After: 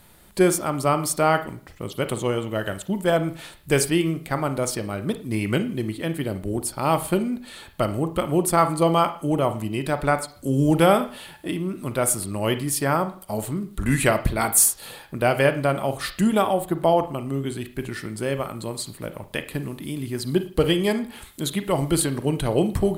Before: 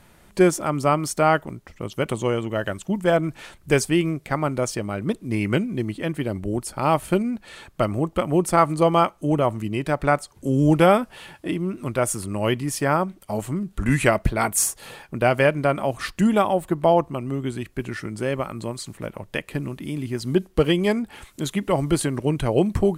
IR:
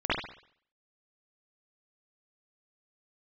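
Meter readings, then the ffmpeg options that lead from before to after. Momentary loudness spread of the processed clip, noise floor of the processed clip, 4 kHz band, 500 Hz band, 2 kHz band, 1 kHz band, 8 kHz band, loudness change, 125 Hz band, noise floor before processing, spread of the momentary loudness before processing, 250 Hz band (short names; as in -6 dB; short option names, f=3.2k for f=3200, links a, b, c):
12 LU, -49 dBFS, +2.0 dB, -1.0 dB, -1.0 dB, -1.0 dB, +4.5 dB, -0.5 dB, -1.0 dB, -54 dBFS, 12 LU, -1.0 dB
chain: -filter_complex "[0:a]aexciter=amount=2.1:drive=2.1:freq=3.4k,acrusher=bits=10:mix=0:aa=0.000001,asplit=2[a][b];[1:a]atrim=start_sample=2205,asetrate=57330,aresample=44100[c];[b][c]afir=irnorm=-1:irlink=0,volume=-19.5dB[d];[a][d]amix=inputs=2:normalize=0,volume=-2dB"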